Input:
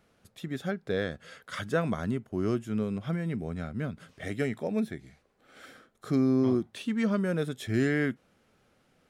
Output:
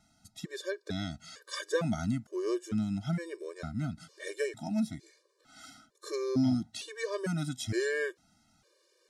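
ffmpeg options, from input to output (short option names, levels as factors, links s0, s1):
-af "aexciter=amount=2.4:drive=9.7:freq=4100,lowpass=6200,afftfilt=real='re*gt(sin(2*PI*1.1*pts/sr)*(1-2*mod(floor(b*sr/1024/310),2)),0)':imag='im*gt(sin(2*PI*1.1*pts/sr)*(1-2*mod(floor(b*sr/1024/310),2)),0)':win_size=1024:overlap=0.75"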